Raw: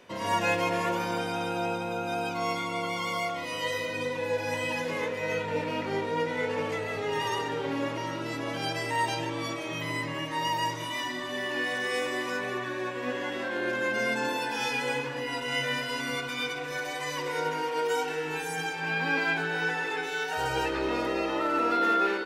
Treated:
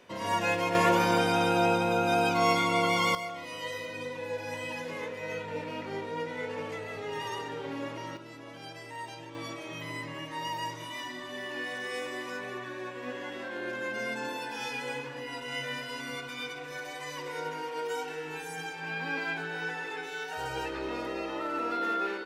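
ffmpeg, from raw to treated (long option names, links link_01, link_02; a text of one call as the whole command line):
ffmpeg -i in.wav -af "asetnsamples=nb_out_samples=441:pad=0,asendcmd='0.75 volume volume 5.5dB;3.15 volume volume -6dB;8.17 volume volume -13dB;9.35 volume volume -6dB',volume=-2dB" out.wav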